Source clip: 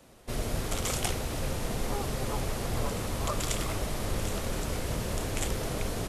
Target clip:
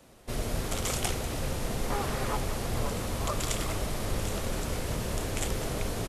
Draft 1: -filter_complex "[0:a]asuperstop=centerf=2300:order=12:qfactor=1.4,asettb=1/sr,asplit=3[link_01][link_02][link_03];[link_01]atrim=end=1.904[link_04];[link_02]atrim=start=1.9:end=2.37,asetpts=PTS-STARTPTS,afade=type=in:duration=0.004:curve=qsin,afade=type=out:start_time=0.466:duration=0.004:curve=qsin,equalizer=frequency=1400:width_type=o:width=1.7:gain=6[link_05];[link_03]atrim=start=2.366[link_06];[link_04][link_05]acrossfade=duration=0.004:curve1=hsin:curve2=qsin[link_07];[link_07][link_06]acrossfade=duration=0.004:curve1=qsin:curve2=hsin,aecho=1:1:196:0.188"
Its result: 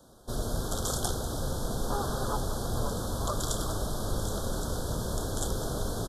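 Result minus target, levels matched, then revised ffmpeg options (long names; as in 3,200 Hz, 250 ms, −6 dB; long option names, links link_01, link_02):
2,000 Hz band −6.5 dB
-filter_complex "[0:a]asettb=1/sr,asplit=3[link_01][link_02][link_03];[link_01]atrim=end=1.904[link_04];[link_02]atrim=start=1.9:end=2.37,asetpts=PTS-STARTPTS,afade=type=in:duration=0.004:curve=qsin,afade=type=out:start_time=0.466:duration=0.004:curve=qsin,equalizer=frequency=1400:width_type=o:width=1.7:gain=6[link_05];[link_03]atrim=start=2.366[link_06];[link_04][link_05]acrossfade=duration=0.004:curve1=hsin:curve2=qsin[link_07];[link_07][link_06]acrossfade=duration=0.004:curve1=qsin:curve2=hsin,aecho=1:1:196:0.188"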